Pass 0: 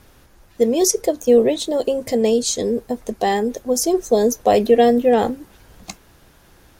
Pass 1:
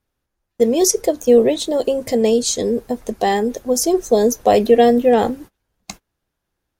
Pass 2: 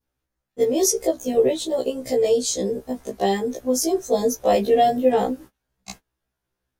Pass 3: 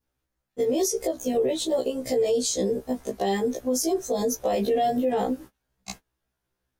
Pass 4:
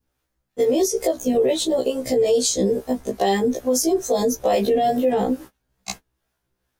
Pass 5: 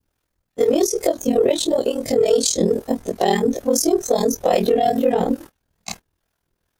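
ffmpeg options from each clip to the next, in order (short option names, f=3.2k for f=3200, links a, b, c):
-af "agate=range=-28dB:threshold=-37dB:ratio=16:detection=peak,volume=1.5dB"
-af "adynamicequalizer=threshold=0.0251:dfrequency=2000:dqfactor=0.8:tfrequency=2000:tqfactor=0.8:attack=5:release=100:ratio=0.375:range=2:mode=cutabove:tftype=bell,afftfilt=real='re*1.73*eq(mod(b,3),0)':imag='im*1.73*eq(mod(b,3),0)':win_size=2048:overlap=0.75,volume=-1.5dB"
-af "alimiter=limit=-16.5dB:level=0:latency=1:release=75"
-filter_complex "[0:a]acrossover=split=400[a][b];[a]aeval=exprs='val(0)*(1-0.5/2+0.5/2*cos(2*PI*2.3*n/s))':c=same[c];[b]aeval=exprs='val(0)*(1-0.5/2-0.5/2*cos(2*PI*2.3*n/s))':c=same[d];[c][d]amix=inputs=2:normalize=0,volume=7.5dB"
-af "aeval=exprs='0.376*(cos(1*acos(clip(val(0)/0.376,-1,1)))-cos(1*PI/2))+0.0237*(cos(2*acos(clip(val(0)/0.376,-1,1)))-cos(2*PI/2))+0.0168*(cos(3*acos(clip(val(0)/0.376,-1,1)))-cos(3*PI/2))+0.00668*(cos(4*acos(clip(val(0)/0.376,-1,1)))-cos(4*PI/2))':c=same,aeval=exprs='val(0)*sin(2*PI*20*n/s)':c=same,volume=5.5dB"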